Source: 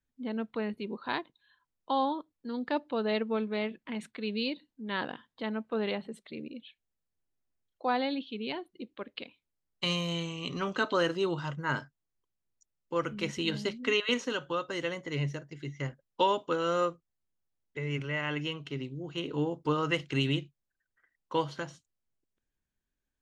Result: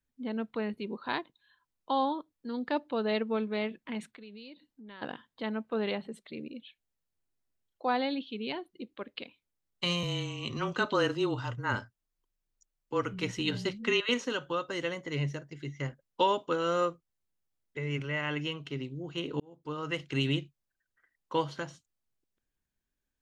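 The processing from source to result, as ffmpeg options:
ffmpeg -i in.wav -filter_complex "[0:a]asplit=3[link_01][link_02][link_03];[link_01]afade=type=out:start_time=4.04:duration=0.02[link_04];[link_02]acompressor=threshold=-50dB:ratio=3:attack=3.2:release=140:knee=1:detection=peak,afade=type=in:start_time=4.04:duration=0.02,afade=type=out:start_time=5.01:duration=0.02[link_05];[link_03]afade=type=in:start_time=5.01:duration=0.02[link_06];[link_04][link_05][link_06]amix=inputs=3:normalize=0,asettb=1/sr,asplit=3[link_07][link_08][link_09];[link_07]atrim=end=10.034[link_10];[link_08]atrim=start=10.03:end=14.06,asetpts=PTS-STARTPTS,afade=type=in:duration=0.004:curve=qsin,afade=type=out:start_time=4.026:duration=0.004:curve=qsin,afreqshift=-24[link_11];[link_09]atrim=start=14.056[link_12];[link_10][link_11]acrossfade=duration=0.004:curve1=hsin:curve2=qsin[link_13];[link_13][link_12]acrossfade=duration=0.004:curve1=qsin:curve2=hsin,asplit=2[link_14][link_15];[link_14]atrim=end=19.4,asetpts=PTS-STARTPTS,afade=type=out:start_time=19.396:duration=0.004:curve=hsin[link_16];[link_15]atrim=start=19.4,asetpts=PTS-STARTPTS,afade=type=in:duration=0.88[link_17];[link_16][link_17]concat=n=2:v=0:a=1" out.wav

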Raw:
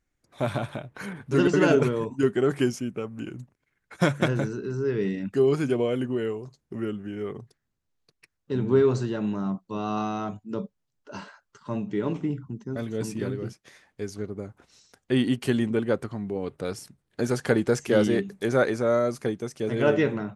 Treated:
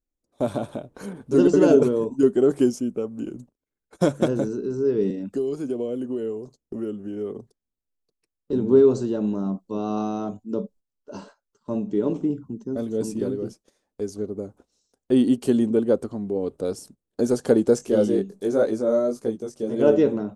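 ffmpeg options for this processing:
ffmpeg -i in.wav -filter_complex "[0:a]asettb=1/sr,asplit=3[link_01][link_02][link_03];[link_01]atrim=end=5.104[link_04];[link_02]atrim=start=5.1:end=8.53,asetpts=PTS-STARTPTS,afade=type=in:duration=0.004:curve=qsin,afade=type=out:start_time=3.426:duration=0.004:curve=qsin,acrossover=split=360|2200[link_05][link_06][link_07];[link_05]acompressor=threshold=-34dB:ratio=4[link_08];[link_06]acompressor=threshold=-36dB:ratio=4[link_09];[link_07]acompressor=threshold=-51dB:ratio=4[link_10];[link_08][link_09][link_10]amix=inputs=3:normalize=0[link_11];[link_03]atrim=start=8.526[link_12];[link_04][link_11]acrossfade=duration=0.004:curve1=hsin:curve2=qsin[link_13];[link_13][link_12]acrossfade=duration=0.004:curve1=qsin:curve2=hsin,asplit=3[link_14][link_15][link_16];[link_14]afade=type=out:start_time=17.78:duration=0.02[link_17];[link_15]flanger=delay=17.5:depth=4.6:speed=1.5,afade=type=in:start_time=17.78:duration=0.02,afade=type=out:start_time=19.78:duration=0.02[link_18];[link_16]afade=type=in:start_time=19.78:duration=0.02[link_19];[link_17][link_18][link_19]amix=inputs=3:normalize=0,equalizer=frequency=125:width_type=o:width=1:gain=-7,equalizer=frequency=250:width_type=o:width=1:gain=7,equalizer=frequency=500:width_type=o:width=1:gain=7,equalizer=frequency=2000:width_type=o:width=1:gain=-11,equalizer=frequency=8000:width_type=o:width=1:gain=5,agate=range=-13dB:threshold=-46dB:ratio=16:detection=peak,lowshelf=frequency=63:gain=11.5,volume=-2dB" out.wav

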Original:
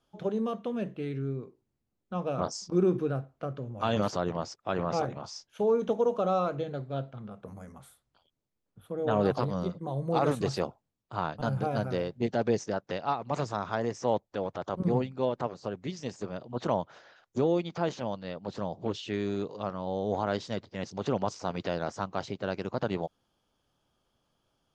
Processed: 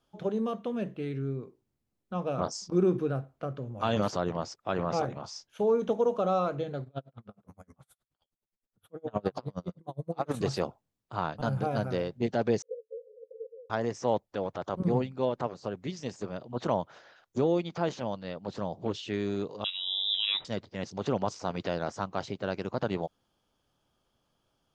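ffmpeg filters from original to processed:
ffmpeg -i in.wav -filter_complex "[0:a]asplit=3[link_01][link_02][link_03];[link_01]afade=type=out:start_time=6.84:duration=0.02[link_04];[link_02]aeval=exprs='val(0)*pow(10,-36*(0.5-0.5*cos(2*PI*9.6*n/s))/20)':channel_layout=same,afade=type=in:start_time=6.84:duration=0.02,afade=type=out:start_time=10.33:duration=0.02[link_05];[link_03]afade=type=in:start_time=10.33:duration=0.02[link_06];[link_04][link_05][link_06]amix=inputs=3:normalize=0,asettb=1/sr,asplit=3[link_07][link_08][link_09];[link_07]atrim=end=12.624[link_10];[link_08]atrim=start=12.62:end=13.7,asetpts=PTS-STARTPTS,afade=type=in:duration=0.004:curve=qsin,afade=type=out:start_time=1.076:duration=0.004:curve=qsin,asuperpass=centerf=480:order=12:qfactor=5.3[link_11];[link_09]atrim=start=13.696[link_12];[link_10][link_11]acrossfade=duration=0.004:curve1=hsin:curve2=qsin[link_13];[link_13][link_12]acrossfade=duration=0.004:curve1=qsin:curve2=hsin,asettb=1/sr,asplit=3[link_14][link_15][link_16];[link_14]atrim=end=19.644[link_17];[link_15]atrim=start=19.64:end=20.45,asetpts=PTS-STARTPTS,afade=type=in:duration=0.004:curve=qsin,afade=type=out:start_time=0.806:duration=0.004:curve=qsin,lowpass=frequency=3400:width_type=q:width=0.5098,lowpass=frequency=3400:width_type=q:width=0.6013,lowpass=frequency=3400:width_type=q:width=0.9,lowpass=frequency=3400:width_type=q:width=2.563,afreqshift=-4000[link_18];[link_16]atrim=start=20.446[link_19];[link_17][link_18]acrossfade=duration=0.004:curve1=hsin:curve2=qsin[link_20];[link_20][link_19]acrossfade=duration=0.004:curve1=qsin:curve2=hsin" out.wav

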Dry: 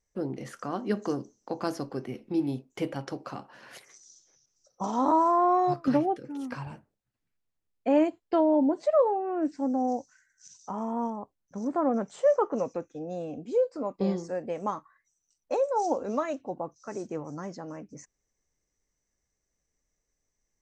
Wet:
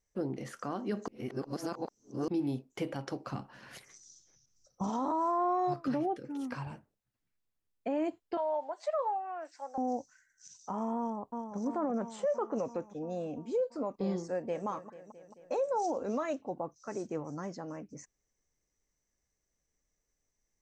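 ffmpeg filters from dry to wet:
ffmpeg -i in.wav -filter_complex "[0:a]asplit=3[link_01][link_02][link_03];[link_01]afade=type=out:start_time=3.26:duration=0.02[link_04];[link_02]asubboost=boost=3.5:cutoff=240,afade=type=in:start_time=3.26:duration=0.02,afade=type=out:start_time=4.89:duration=0.02[link_05];[link_03]afade=type=in:start_time=4.89:duration=0.02[link_06];[link_04][link_05][link_06]amix=inputs=3:normalize=0,asettb=1/sr,asplit=3[link_07][link_08][link_09];[link_07]atrim=end=8.374[link_10];[link_08]atrim=start=8.37:end=9.78,asetpts=PTS-STARTPTS,afade=type=in:duration=0.004:curve=qsin,afade=type=out:start_time=1.406:duration=0.004:curve=qsin,highpass=frequency=680:width=0.5412,highpass=frequency=680:width=1.3066[link_11];[link_09]atrim=start=9.776[link_12];[link_10][link_11]acrossfade=duration=0.004:curve1=hsin:curve2=qsin[link_13];[link_13][link_12]acrossfade=duration=0.004:curve1=qsin:curve2=hsin,asplit=2[link_14][link_15];[link_15]afade=type=in:start_time=10.98:duration=0.01,afade=type=out:start_time=11.57:duration=0.01,aecho=0:1:340|680|1020|1360|1700|2040|2380|2720|3060|3400|3740:0.501187|0.350831|0.245582|0.171907|0.120335|0.0842345|0.0589642|0.0412749|0.0288924|0.0202247|0.0141573[link_16];[link_14][link_16]amix=inputs=2:normalize=0,asplit=2[link_17][link_18];[link_18]afade=type=in:start_time=14.26:duration=0.01,afade=type=out:start_time=14.67:duration=0.01,aecho=0:1:220|440|660|880|1100|1320|1540|1760|1980:0.188365|0.131855|0.0922988|0.0646092|0.0452264|0.0316585|0.0221609|0.0155127|0.0108589[link_19];[link_17][link_19]amix=inputs=2:normalize=0,asplit=3[link_20][link_21][link_22];[link_20]atrim=end=1.082[link_23];[link_21]atrim=start=1.078:end=2.282,asetpts=PTS-STARTPTS,areverse[link_24];[link_22]atrim=start=2.278[link_25];[link_23][link_24]acrossfade=duration=0.004:curve1=hsin:curve2=hsin[link_26];[link_26][link_25]acrossfade=duration=0.004:curve1=hsin:curve2=hsin,alimiter=limit=-22.5dB:level=0:latency=1:release=57,volume=-2dB" out.wav

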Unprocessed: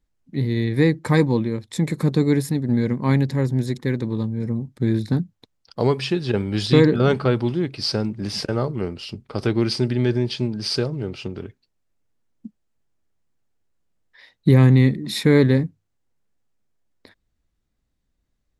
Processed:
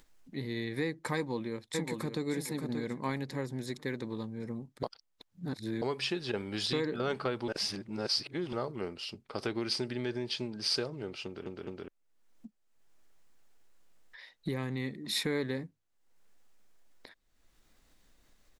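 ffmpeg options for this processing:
ffmpeg -i in.wav -filter_complex "[0:a]asplit=2[link_01][link_02];[link_02]afade=type=in:start_time=1.16:duration=0.01,afade=type=out:start_time=2.26:duration=0.01,aecho=0:1:580|1160|1740:0.501187|0.125297|0.0313242[link_03];[link_01][link_03]amix=inputs=2:normalize=0,asplit=8[link_04][link_05][link_06][link_07][link_08][link_09][link_10][link_11];[link_04]atrim=end=4.832[link_12];[link_05]atrim=start=4.828:end=5.822,asetpts=PTS-STARTPTS,areverse[link_13];[link_06]atrim=start=5.818:end=7.482[link_14];[link_07]atrim=start=7.478:end=8.532,asetpts=PTS-STARTPTS,areverse[link_15];[link_08]atrim=start=8.528:end=11.462[link_16];[link_09]atrim=start=11.248:end=11.462[link_17];[link_10]atrim=start=11.248:end=11.462[link_18];[link_11]atrim=start=11.878[link_19];[link_12][link_13]acrossfade=duration=0.004:curve1=hsin:curve2=hsin[link_20];[link_20][link_14]acrossfade=duration=0.004:curve1=hsin:curve2=hsin[link_21];[link_21][link_15]acrossfade=duration=0.004:curve1=hsin:curve2=hsin[link_22];[link_22][link_16]acrossfade=duration=0.004:curve1=hsin:curve2=hsin[link_23];[link_23][link_17]acrossfade=duration=0.004:curve1=hsin:curve2=hsin[link_24];[link_24][link_18]acrossfade=duration=0.004:curve1=hsin:curve2=hsin[link_25];[link_25][link_19]acrossfade=duration=0.004:curve1=hsin:curve2=hsin,acompressor=threshold=-18dB:ratio=5,equalizer=frequency=82:width=0.34:gain=-14,acompressor=mode=upward:threshold=-41dB:ratio=2.5,volume=-5dB" out.wav

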